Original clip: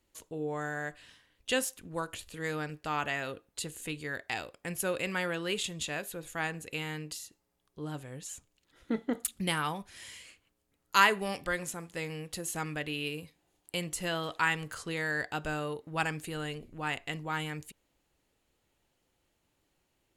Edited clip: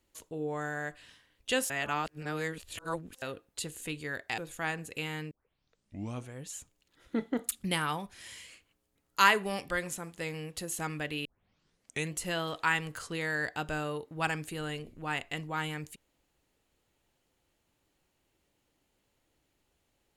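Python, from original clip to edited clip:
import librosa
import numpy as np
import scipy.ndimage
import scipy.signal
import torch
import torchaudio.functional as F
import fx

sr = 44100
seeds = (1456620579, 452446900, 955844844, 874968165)

y = fx.edit(x, sr, fx.reverse_span(start_s=1.7, length_s=1.52),
    fx.cut(start_s=4.38, length_s=1.76),
    fx.tape_start(start_s=7.07, length_s=1.04),
    fx.tape_start(start_s=13.01, length_s=0.88), tone=tone)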